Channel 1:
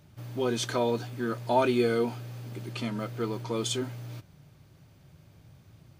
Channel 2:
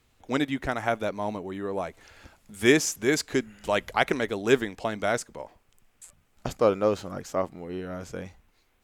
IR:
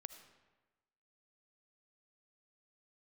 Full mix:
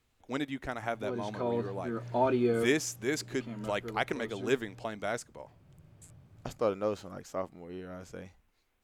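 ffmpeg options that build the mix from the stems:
-filter_complex "[0:a]lowpass=f=1200:p=1,adelay=650,volume=0.794[s0];[1:a]volume=0.398,asplit=2[s1][s2];[s2]apad=whole_len=293238[s3];[s0][s3]sidechaincompress=threshold=0.02:ratio=8:attack=8.2:release=824[s4];[s4][s1]amix=inputs=2:normalize=0"

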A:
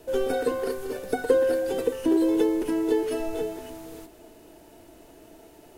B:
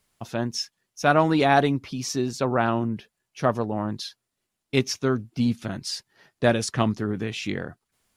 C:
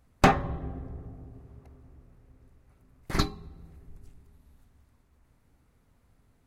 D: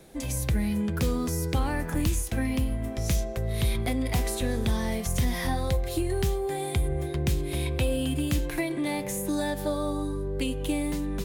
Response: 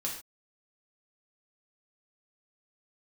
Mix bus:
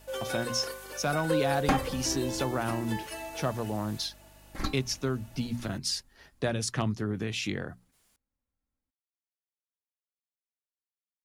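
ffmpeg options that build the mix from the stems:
-filter_complex "[0:a]highpass=910,aecho=1:1:3.5:0.68,aeval=exprs='val(0)+0.002*(sin(2*PI*50*n/s)+sin(2*PI*2*50*n/s)/2+sin(2*PI*3*50*n/s)/3+sin(2*PI*4*50*n/s)/4+sin(2*PI*5*50*n/s)/5)':c=same,volume=0.841[s0];[1:a]acrossover=split=130[s1][s2];[s2]acompressor=threshold=0.0282:ratio=2.5[s3];[s1][s3]amix=inputs=2:normalize=0,highshelf=f=4500:g=5.5,bandreject=f=60:t=h:w=6,bandreject=f=120:t=h:w=6,bandreject=f=180:t=h:w=6,bandreject=f=240:t=h:w=6,volume=0.944[s4];[2:a]aecho=1:1:3.7:0.53,adelay=1450,volume=0.422,asplit=2[s5][s6];[s6]volume=0.133,aecho=0:1:993:1[s7];[s0][s4][s5][s7]amix=inputs=4:normalize=0,aeval=exprs='clip(val(0),-1,0.126)':c=same"

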